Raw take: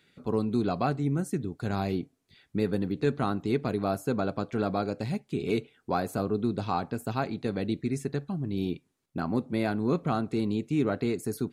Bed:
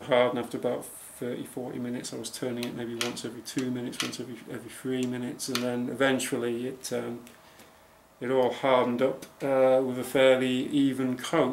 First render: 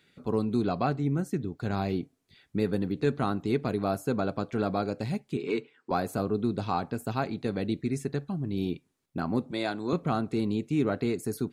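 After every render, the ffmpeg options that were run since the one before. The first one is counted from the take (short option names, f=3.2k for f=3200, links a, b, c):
-filter_complex "[0:a]asettb=1/sr,asplit=3[a][b][c];[a]atrim=end=0.644[d];[b]atrim=start=0.64:end=1.96,asetpts=PTS-STARTPTS,afade=t=in:d=0.004:c=qsin,afade=t=out:st=1.316:d=0.004:c=qsin,equalizer=f=9.8k:t=o:w=0.77:g=-8[e];[c]atrim=start=1.956[f];[d][e]acrossfade=d=0.004:c1=hsin:c2=qsin[g];[g][f]acrossfade=d=0.004:c1=qsin:c2=hsin,asettb=1/sr,asplit=3[h][i][j];[h]atrim=end=5.374[k];[i]atrim=start=5.37:end=5.91,asetpts=PTS-STARTPTS,afade=t=in:d=0.004:c=qsin,afade=t=out:st=0.536:d=0.004:c=qsin,highpass=f=170:w=0.5412,highpass=f=170:w=1.3066,equalizer=f=200:t=q:w=4:g=-10,equalizer=f=680:t=q:w=4:g=-10,equalizer=f=1k:t=q:w=4:g=7,equalizer=f=1.8k:t=q:w=4:g=4,equalizer=f=3.5k:t=q:w=4:g=-5,equalizer=f=6.2k:t=q:w=4:g=-7,lowpass=f=7.4k:w=0.5412,lowpass=f=7.4k:w=1.3066[l];[j]atrim=start=5.906[m];[k][l]acrossfade=d=0.004:c1=hsin:c2=qsin[n];[n][m]acrossfade=d=0.004:c1=qsin:c2=hsin,asettb=1/sr,asplit=3[o][p][q];[o]atrim=end=9.514[r];[p]atrim=start=9.51:end=9.93,asetpts=PTS-STARTPTS,afade=t=in:d=0.004:c=qsin,afade=t=out:st=0.416:d=0.004:c=qsin,highpass=190,equalizer=f=220:t=q:w=4:g=-7,equalizer=f=430:t=q:w=4:g=-4,equalizer=f=3.7k:t=q:w=4:g=9,equalizer=f=7.5k:t=q:w=4:g=10,lowpass=f=9.6k:w=0.5412,lowpass=f=9.6k:w=1.3066[s];[q]atrim=start=9.926[t];[r][s]acrossfade=d=0.004:c1=hsin:c2=qsin[u];[u][t]acrossfade=d=0.004:c1=qsin:c2=hsin"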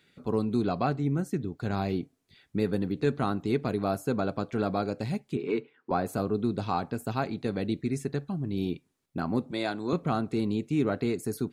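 -filter_complex "[0:a]asettb=1/sr,asplit=3[a][b][c];[a]atrim=end=5.354[d];[b]atrim=start=5.35:end=6.06,asetpts=PTS-STARTPTS,afade=t=in:d=0.004:c=qsin,afade=t=out:st=0.706:d=0.004:c=qsin,aemphasis=mode=reproduction:type=75fm[e];[c]atrim=start=6.056[f];[d][e]acrossfade=d=0.004:c1=hsin:c2=qsin[g];[g][f]acrossfade=d=0.004:c1=qsin:c2=hsin"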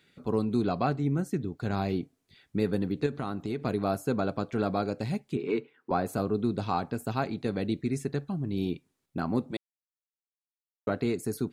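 -filter_complex "[0:a]asettb=1/sr,asplit=3[a][b][c];[a]atrim=end=3.064[d];[b]atrim=start=3.06:end=3.64,asetpts=PTS-STARTPTS,afade=t=in:d=0.004:c=qsin,afade=t=out:st=0.576:d=0.004:c=qsin,acompressor=threshold=-29dB:ratio=3:attack=3.2:release=140:knee=1:detection=peak[e];[c]atrim=start=3.636[f];[d][e]acrossfade=d=0.004:c1=hsin:c2=qsin[g];[g][f]acrossfade=d=0.004:c1=qsin:c2=hsin,asplit=3[h][i][j];[h]atrim=end=9.57,asetpts=PTS-STARTPTS,afade=t=out:st=9.566:d=0.004:c=hsin[k];[i]atrim=start=9.57:end=10.87,asetpts=PTS-STARTPTS,volume=0[l];[j]atrim=start=10.87,asetpts=PTS-STARTPTS,afade=t=in:d=0.004:c=hsin[m];[k][l][m]concat=n=3:v=0:a=1"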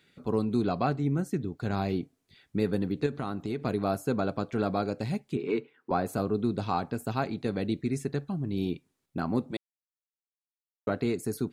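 -af anull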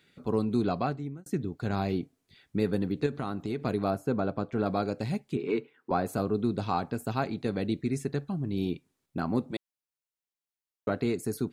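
-filter_complex "[0:a]asettb=1/sr,asplit=3[a][b][c];[a]atrim=end=3.904[d];[b]atrim=start=3.9:end=4.66,asetpts=PTS-STARTPTS,afade=t=in:d=0.004:c=qsin,afade=t=out:st=0.756:d=0.004:c=qsin,highshelf=f=2.8k:g=-10[e];[c]atrim=start=4.656[f];[d][e]acrossfade=d=0.004:c1=hsin:c2=qsin[g];[g][f]acrossfade=d=0.004:c1=qsin:c2=hsin,asplit=2[h][i];[h]atrim=end=1.26,asetpts=PTS-STARTPTS,afade=t=out:st=0.73:d=0.53[j];[i]atrim=start=1.26,asetpts=PTS-STARTPTS,afade=t=in:d=0.004:c=hsin[k];[j][k]concat=n=2:v=0:a=1"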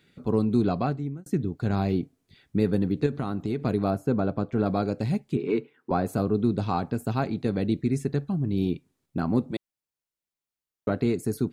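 -af "lowshelf=f=390:g=6.5"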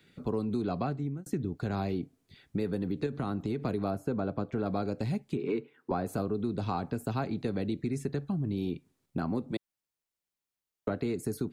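-filter_complex "[0:a]acrossover=split=290|520|2100[a][b][c][d];[a]alimiter=limit=-23.5dB:level=0:latency=1[e];[e][b][c][d]amix=inputs=4:normalize=0,acompressor=threshold=-29dB:ratio=3"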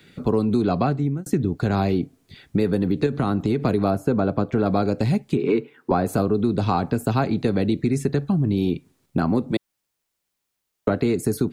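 -af "volume=11dB"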